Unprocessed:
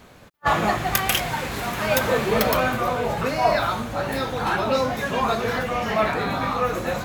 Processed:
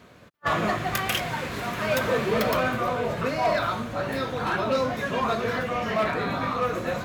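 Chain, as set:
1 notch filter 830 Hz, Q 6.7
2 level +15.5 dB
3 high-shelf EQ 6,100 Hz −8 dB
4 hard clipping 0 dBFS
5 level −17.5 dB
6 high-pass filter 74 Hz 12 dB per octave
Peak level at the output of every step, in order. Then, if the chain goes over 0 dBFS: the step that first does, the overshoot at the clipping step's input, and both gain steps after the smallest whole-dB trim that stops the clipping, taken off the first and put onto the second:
−3.5, +12.0, +8.5, 0.0, −17.5, −14.5 dBFS
step 2, 8.5 dB
step 2 +6.5 dB, step 5 −8.5 dB

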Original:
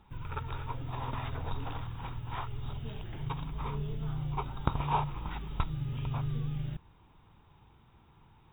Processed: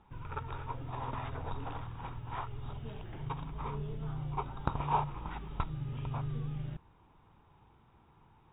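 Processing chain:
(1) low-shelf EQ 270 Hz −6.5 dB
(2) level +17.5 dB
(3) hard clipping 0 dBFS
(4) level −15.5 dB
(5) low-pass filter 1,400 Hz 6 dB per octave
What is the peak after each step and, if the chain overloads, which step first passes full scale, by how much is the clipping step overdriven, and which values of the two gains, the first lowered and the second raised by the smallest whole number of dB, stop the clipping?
−12.0, +5.5, 0.0, −15.5, −15.5 dBFS
step 2, 5.5 dB
step 2 +11.5 dB, step 4 −9.5 dB

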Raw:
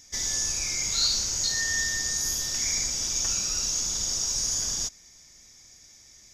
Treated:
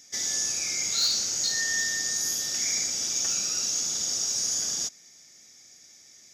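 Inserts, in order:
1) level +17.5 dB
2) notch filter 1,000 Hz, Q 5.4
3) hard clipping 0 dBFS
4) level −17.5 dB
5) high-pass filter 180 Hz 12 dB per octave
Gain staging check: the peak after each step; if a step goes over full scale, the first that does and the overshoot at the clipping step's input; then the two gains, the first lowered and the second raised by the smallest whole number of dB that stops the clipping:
+5.5, +5.5, 0.0, −17.5, −16.0 dBFS
step 1, 5.5 dB
step 1 +11.5 dB, step 4 −11.5 dB

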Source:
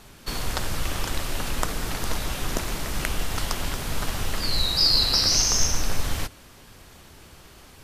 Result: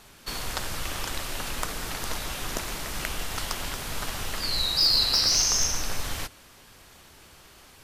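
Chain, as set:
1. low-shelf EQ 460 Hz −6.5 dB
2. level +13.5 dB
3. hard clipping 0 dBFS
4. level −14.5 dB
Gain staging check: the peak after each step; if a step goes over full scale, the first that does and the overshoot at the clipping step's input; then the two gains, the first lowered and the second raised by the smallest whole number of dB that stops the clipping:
−6.0, +7.5, 0.0, −14.5 dBFS
step 2, 7.5 dB
step 2 +5.5 dB, step 4 −6.5 dB

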